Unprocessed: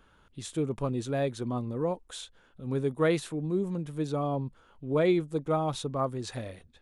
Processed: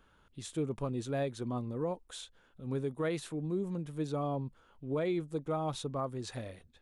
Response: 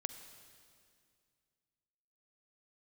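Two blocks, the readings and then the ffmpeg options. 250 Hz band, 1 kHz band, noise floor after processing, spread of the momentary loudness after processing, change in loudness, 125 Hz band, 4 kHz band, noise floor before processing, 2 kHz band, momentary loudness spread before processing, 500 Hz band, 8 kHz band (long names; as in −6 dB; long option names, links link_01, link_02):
−5.5 dB, −5.5 dB, −66 dBFS, 12 LU, −6.0 dB, −5.0 dB, −5.0 dB, −62 dBFS, −7.0 dB, 16 LU, −6.0 dB, −4.0 dB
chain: -af "alimiter=limit=-21dB:level=0:latency=1:release=153,volume=-4dB"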